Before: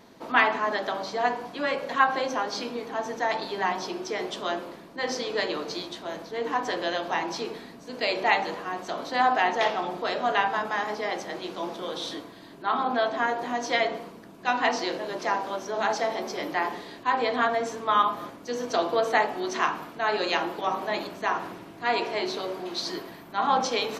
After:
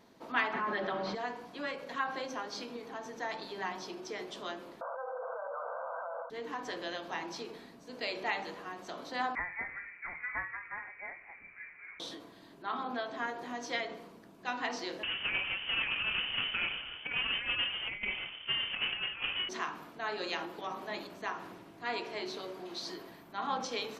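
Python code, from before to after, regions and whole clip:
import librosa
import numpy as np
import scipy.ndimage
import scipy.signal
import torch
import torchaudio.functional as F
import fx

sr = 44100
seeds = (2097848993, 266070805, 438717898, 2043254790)

y = fx.chain(x, sr, fx.lowpass(hz=2600.0, slope=12),
    fx.comb(ms=5.5, depth=0.69),
    fx.env_flatten(amount_pct=70), at=(0.53, 1.15))
y = fx.chain(y, sr, fx.brickwall_bandpass(low_hz=480.0, high_hz=1600.0),
    fx.env_flatten(amount_pct=100), at=(4.81, 6.3))
y = fx.chain(y, sr, fx.peak_eq(hz=180.0, db=-8.5, octaves=1.3),
    fx.freq_invert(carrier_hz=2700),
    fx.upward_expand(threshold_db=-33.0, expansion=1.5), at=(9.35, 12.0))
y = fx.chain(y, sr, fx.halfwave_hold(),
    fx.over_compress(threshold_db=-23.0, ratio=-0.5),
    fx.freq_invert(carrier_hz=3300), at=(15.03, 19.49))
y = fx.dynamic_eq(y, sr, hz=720.0, q=1.2, threshold_db=-36.0, ratio=4.0, max_db=-4)
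y = fx.end_taper(y, sr, db_per_s=100.0)
y = F.gain(torch.from_numpy(y), -8.5).numpy()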